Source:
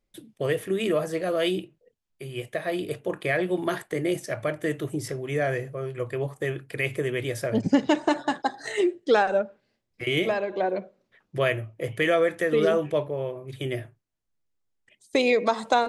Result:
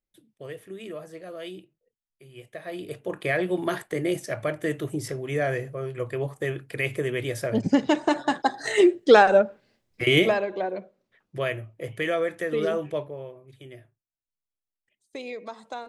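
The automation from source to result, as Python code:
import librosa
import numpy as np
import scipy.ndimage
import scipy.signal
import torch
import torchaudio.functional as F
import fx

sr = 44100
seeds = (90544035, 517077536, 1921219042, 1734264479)

y = fx.gain(x, sr, db=fx.line((2.27, -13.0), (3.26, 0.0), (8.05, 0.0), (8.85, 6.0), (10.17, 6.0), (10.69, -4.0), (12.95, -4.0), (13.66, -15.0)))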